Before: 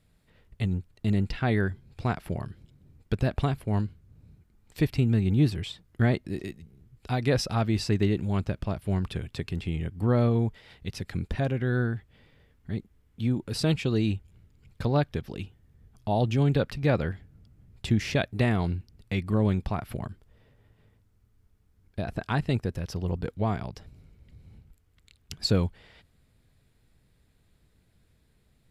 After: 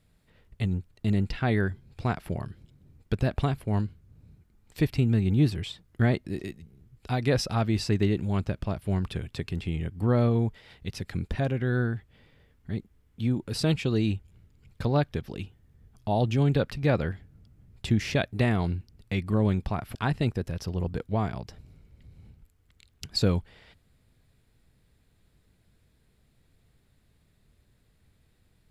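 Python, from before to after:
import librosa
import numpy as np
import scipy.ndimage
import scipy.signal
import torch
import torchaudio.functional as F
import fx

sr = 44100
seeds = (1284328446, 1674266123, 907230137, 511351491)

y = fx.edit(x, sr, fx.cut(start_s=19.95, length_s=2.28), tone=tone)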